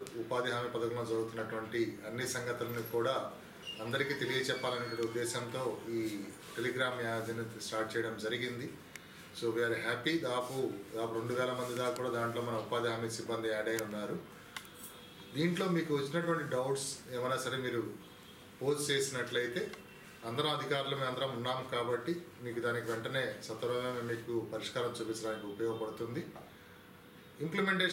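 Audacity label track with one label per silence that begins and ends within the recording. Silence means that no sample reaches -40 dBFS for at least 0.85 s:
26.360000	27.400000	silence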